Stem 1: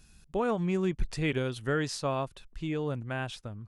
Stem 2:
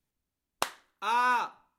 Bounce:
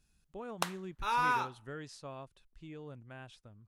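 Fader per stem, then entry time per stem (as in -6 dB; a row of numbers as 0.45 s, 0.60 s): -15.0 dB, -4.0 dB; 0.00 s, 0.00 s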